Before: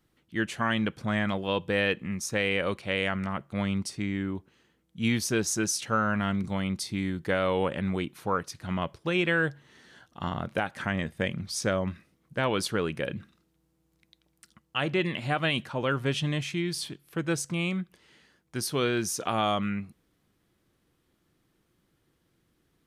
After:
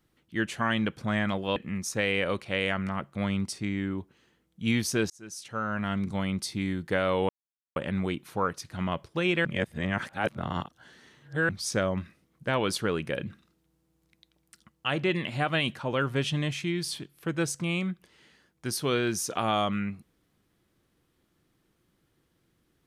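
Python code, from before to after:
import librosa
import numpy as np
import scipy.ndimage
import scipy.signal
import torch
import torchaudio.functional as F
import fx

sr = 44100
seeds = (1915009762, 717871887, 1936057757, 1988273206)

y = fx.edit(x, sr, fx.cut(start_s=1.56, length_s=0.37),
    fx.fade_in_span(start_s=5.47, length_s=1.0),
    fx.insert_silence(at_s=7.66, length_s=0.47),
    fx.reverse_span(start_s=9.35, length_s=2.04), tone=tone)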